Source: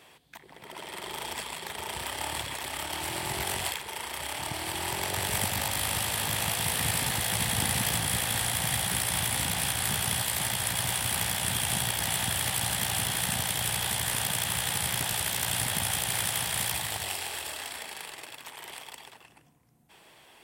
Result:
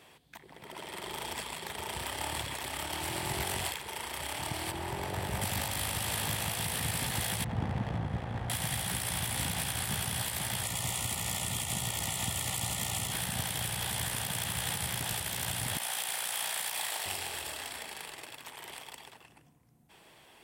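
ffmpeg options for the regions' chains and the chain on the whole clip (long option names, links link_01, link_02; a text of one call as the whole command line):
ffmpeg -i in.wav -filter_complex "[0:a]asettb=1/sr,asplit=3[link_01][link_02][link_03];[link_01]atrim=end=4.714[link_04];[link_02]atrim=start=4.71:end=5.42,asetpts=PTS-STARTPTS,afade=type=in:duration=0.004:curve=qsin,afade=type=out:start_time=0.706:duration=0.004:curve=qsin,highshelf=frequency=2200:gain=-11,asplit=2[link_05][link_06];[link_06]adelay=15,volume=-13dB[link_07];[link_05][link_07]amix=inputs=2:normalize=0,atrim=end_sample=31311[link_08];[link_03]atrim=start=5.416[link_09];[link_04][link_08]acrossfade=duration=0.004:curve1=hsin:curve2=qsin[link_10];[link_10][link_09]acrossfade=duration=0.004:curve1=qsin:curve2=hsin,asettb=1/sr,asplit=3[link_11][link_12][link_13];[link_11]atrim=end=7.444[link_14];[link_12]atrim=start=7.44:end=8.5,asetpts=PTS-STARTPTS,afade=type=in:duration=0.004:curve=qsin,afade=type=out:start_time=1.056:duration=0.004:curve=qsin,highshelf=frequency=11000:gain=4,adynamicsmooth=sensitivity=1:basefreq=680[link_15];[link_13]atrim=start=8.496[link_16];[link_14][link_15]acrossfade=duration=0.004:curve1=hsin:curve2=qsin[link_17];[link_17][link_16]acrossfade=duration=0.004:curve1=qsin:curve2=hsin,asettb=1/sr,asplit=3[link_18][link_19][link_20];[link_18]atrim=end=10.634[link_21];[link_19]atrim=start=10.63:end=13.12,asetpts=PTS-STARTPTS,afade=type=in:duration=0.004:curve=qsin,afade=type=out:start_time=2.486:duration=0.004:curve=qsin,asuperstop=centerf=1600:order=12:qfactor=5.6,equalizer=frequency=7000:width_type=o:width=0.3:gain=7.5[link_22];[link_20]atrim=start=13.116[link_23];[link_21][link_22]acrossfade=duration=0.004:curve1=hsin:curve2=qsin[link_24];[link_24][link_23]acrossfade=duration=0.004:curve1=qsin:curve2=hsin,asettb=1/sr,asplit=3[link_25][link_26][link_27];[link_25]atrim=end=15.774[link_28];[link_26]atrim=start=15.77:end=17.06,asetpts=PTS-STARTPTS,afade=type=in:duration=0.004:curve=qsin,afade=type=out:start_time=1.286:duration=0.004:curve=qsin,highpass=530,asplit=2[link_29][link_30];[link_30]adelay=35,volume=-6dB[link_31];[link_29][link_31]amix=inputs=2:normalize=0,atrim=end_sample=56889[link_32];[link_27]atrim=start=17.056[link_33];[link_28][link_32]acrossfade=duration=0.004:curve1=hsin:curve2=qsin[link_34];[link_34][link_33]acrossfade=duration=0.004:curve1=qsin:curve2=hsin,lowshelf=frequency=380:gain=4,alimiter=limit=-18.5dB:level=0:latency=1:release=100,acontrast=30,volume=-8dB" out.wav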